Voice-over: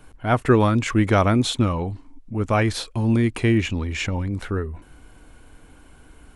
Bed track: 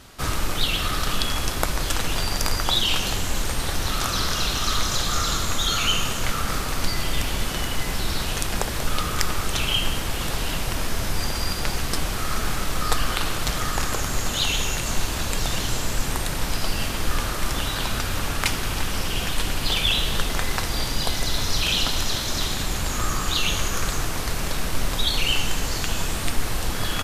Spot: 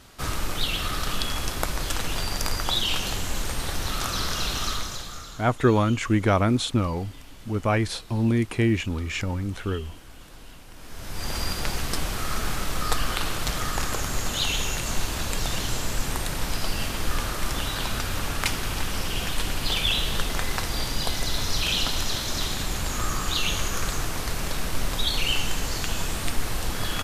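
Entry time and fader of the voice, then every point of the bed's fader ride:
5.15 s, -3.0 dB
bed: 4.64 s -3.5 dB
5.46 s -21.5 dB
10.71 s -21.5 dB
11.34 s -2.5 dB

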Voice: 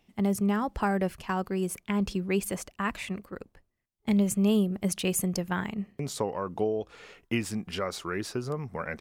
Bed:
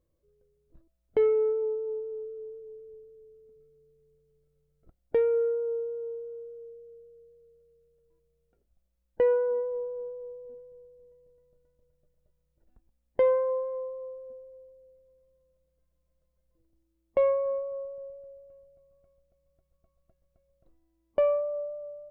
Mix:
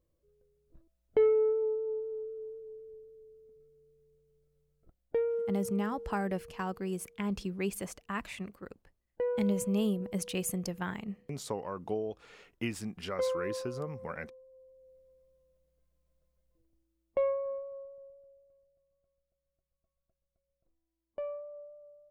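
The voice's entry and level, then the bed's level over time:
5.30 s, -6.0 dB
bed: 4.65 s -1.5 dB
5.57 s -9 dB
14.47 s -9 dB
14.97 s -0.5 dB
16.28 s -0.5 dB
18.78 s -14 dB

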